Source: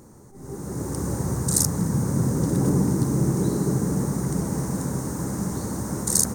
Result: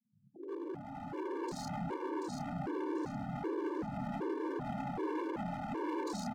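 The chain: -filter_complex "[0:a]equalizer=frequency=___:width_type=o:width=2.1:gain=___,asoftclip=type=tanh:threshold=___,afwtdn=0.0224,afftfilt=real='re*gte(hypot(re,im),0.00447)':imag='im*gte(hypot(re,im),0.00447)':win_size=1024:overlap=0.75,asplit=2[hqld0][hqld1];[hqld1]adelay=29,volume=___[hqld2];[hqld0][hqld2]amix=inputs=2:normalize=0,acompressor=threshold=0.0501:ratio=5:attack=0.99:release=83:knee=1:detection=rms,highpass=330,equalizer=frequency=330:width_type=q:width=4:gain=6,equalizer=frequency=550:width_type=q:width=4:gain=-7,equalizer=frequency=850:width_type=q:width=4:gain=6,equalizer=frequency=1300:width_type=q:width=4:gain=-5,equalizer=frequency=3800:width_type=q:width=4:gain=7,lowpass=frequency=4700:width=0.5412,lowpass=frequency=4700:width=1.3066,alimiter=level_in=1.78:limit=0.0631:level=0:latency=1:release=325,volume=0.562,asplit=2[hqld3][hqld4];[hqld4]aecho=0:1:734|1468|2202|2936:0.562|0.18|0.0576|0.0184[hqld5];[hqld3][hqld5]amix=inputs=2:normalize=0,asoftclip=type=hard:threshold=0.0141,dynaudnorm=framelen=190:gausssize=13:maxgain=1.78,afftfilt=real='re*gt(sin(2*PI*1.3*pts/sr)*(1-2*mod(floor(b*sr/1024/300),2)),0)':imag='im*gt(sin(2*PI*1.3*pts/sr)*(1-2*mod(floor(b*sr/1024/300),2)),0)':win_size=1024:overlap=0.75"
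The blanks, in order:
850, 3.5, 0.15, 0.562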